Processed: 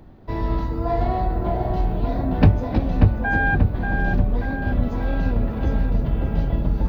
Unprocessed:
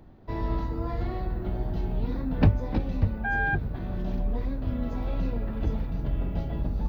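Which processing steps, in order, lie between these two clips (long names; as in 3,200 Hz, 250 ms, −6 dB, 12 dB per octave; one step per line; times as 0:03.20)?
0:00.85–0:01.75: parametric band 700 Hz +11.5 dB 0.43 octaves
on a send: feedback echo with a low-pass in the loop 586 ms, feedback 62%, low-pass 2,600 Hz, level −5 dB
on the sum: level +5.5 dB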